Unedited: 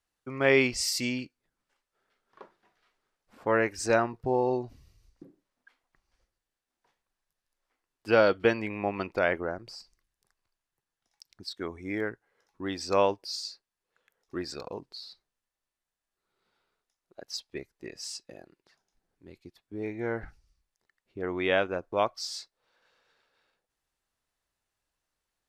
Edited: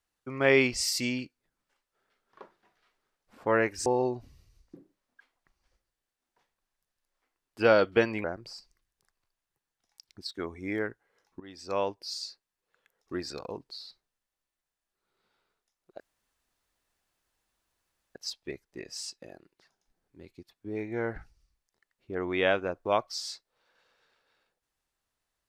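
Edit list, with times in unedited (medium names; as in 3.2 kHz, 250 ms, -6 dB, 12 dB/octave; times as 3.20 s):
3.86–4.34 s: delete
8.72–9.46 s: delete
12.62–13.50 s: fade in, from -19 dB
17.22 s: insert room tone 2.15 s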